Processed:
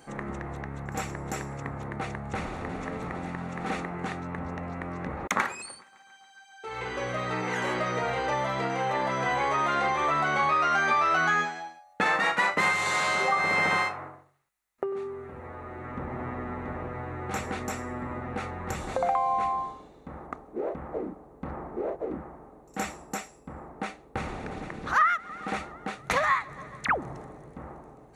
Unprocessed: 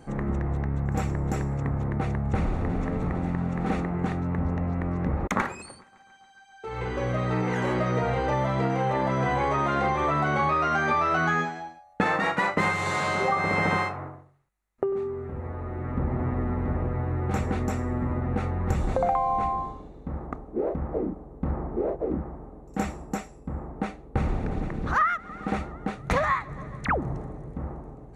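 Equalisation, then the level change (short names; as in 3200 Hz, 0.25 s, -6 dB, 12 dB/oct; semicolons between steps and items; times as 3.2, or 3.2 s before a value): tilt +3.5 dB/oct; high shelf 5000 Hz -7.5 dB; 0.0 dB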